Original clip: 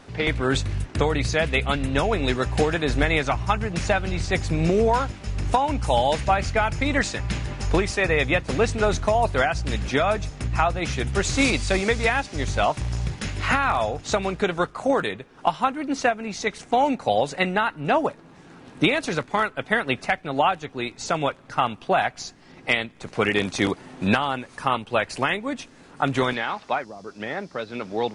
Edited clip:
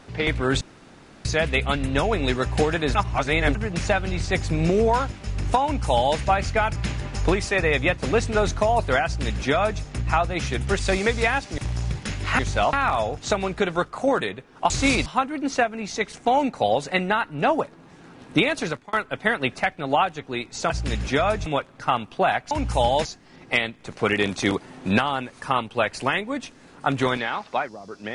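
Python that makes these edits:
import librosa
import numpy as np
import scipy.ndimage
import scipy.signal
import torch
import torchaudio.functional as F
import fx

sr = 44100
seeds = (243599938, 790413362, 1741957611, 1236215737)

y = fx.edit(x, sr, fx.room_tone_fill(start_s=0.61, length_s=0.64),
    fx.reverse_span(start_s=2.95, length_s=0.6),
    fx.duplicate(start_s=5.64, length_s=0.54, to_s=22.21),
    fx.cut(start_s=6.76, length_s=0.46),
    fx.duplicate(start_s=9.51, length_s=0.76, to_s=21.16),
    fx.move(start_s=11.25, length_s=0.36, to_s=15.52),
    fx.move(start_s=12.4, length_s=0.34, to_s=13.55),
    fx.fade_out_span(start_s=19.1, length_s=0.29), tone=tone)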